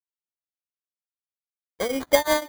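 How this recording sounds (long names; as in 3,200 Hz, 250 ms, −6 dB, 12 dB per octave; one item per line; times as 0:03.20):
a quantiser's noise floor 12 bits, dither none
tremolo triangle 5.7 Hz, depth 95%
aliases and images of a low sample rate 2,700 Hz, jitter 0%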